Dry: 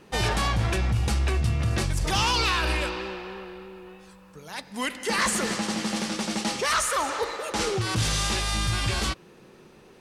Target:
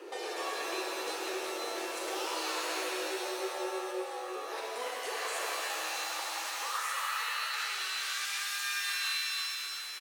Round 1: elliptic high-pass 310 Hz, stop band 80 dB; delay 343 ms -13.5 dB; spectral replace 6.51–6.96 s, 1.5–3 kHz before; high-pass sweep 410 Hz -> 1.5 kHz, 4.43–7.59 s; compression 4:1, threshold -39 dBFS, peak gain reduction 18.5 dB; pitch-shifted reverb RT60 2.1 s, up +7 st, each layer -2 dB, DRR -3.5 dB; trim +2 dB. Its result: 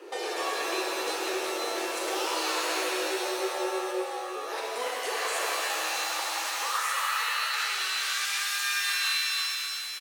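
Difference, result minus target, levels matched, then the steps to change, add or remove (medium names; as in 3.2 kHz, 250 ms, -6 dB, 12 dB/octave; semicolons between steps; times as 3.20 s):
compression: peak gain reduction -5.5 dB
change: compression 4:1, threshold -46.5 dBFS, peak gain reduction 24 dB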